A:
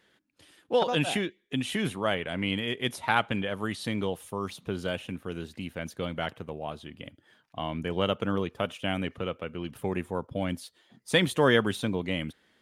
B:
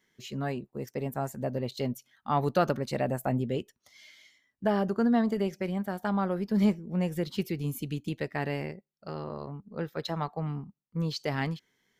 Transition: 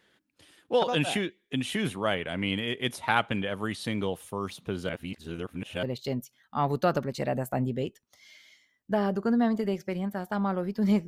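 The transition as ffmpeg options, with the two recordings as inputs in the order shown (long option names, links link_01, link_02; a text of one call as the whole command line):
ffmpeg -i cue0.wav -i cue1.wav -filter_complex "[0:a]apad=whole_dur=11.07,atrim=end=11.07,asplit=2[link_01][link_02];[link_01]atrim=end=4.892[link_03];[link_02]atrim=start=4.888:end=5.832,asetpts=PTS-STARTPTS,areverse[link_04];[1:a]atrim=start=1.558:end=6.8[link_05];[link_03][link_04]acrossfade=duration=0.004:curve1=hsin:curve2=hsin[link_06];[link_06][link_05]acrossfade=duration=0.004:curve1=hsin:curve2=hsin" out.wav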